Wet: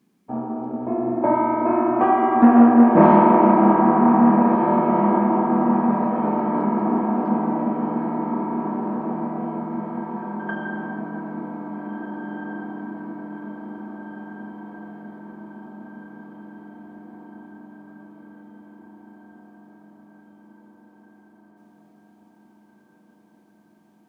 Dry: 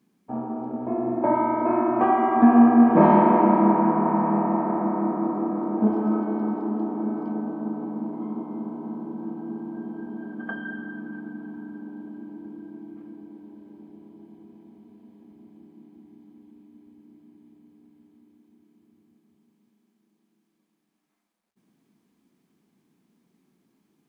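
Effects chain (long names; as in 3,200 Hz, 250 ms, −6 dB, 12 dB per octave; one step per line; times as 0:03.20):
0:04.55–0:07.14: compressor whose output falls as the input rises −29 dBFS
feedback delay with all-pass diffusion 1,687 ms, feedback 60%, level −6 dB
highs frequency-modulated by the lows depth 0.13 ms
level +2.5 dB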